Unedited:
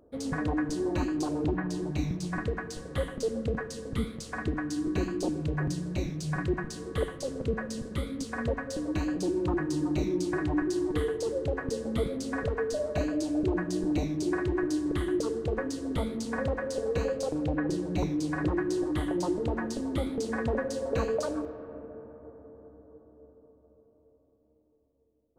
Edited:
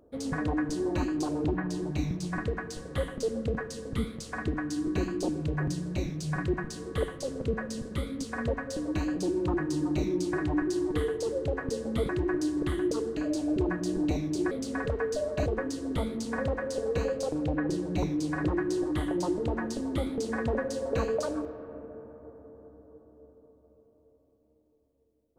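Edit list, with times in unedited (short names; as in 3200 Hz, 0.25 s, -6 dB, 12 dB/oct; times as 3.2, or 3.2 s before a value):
12.09–13.04 swap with 14.38–15.46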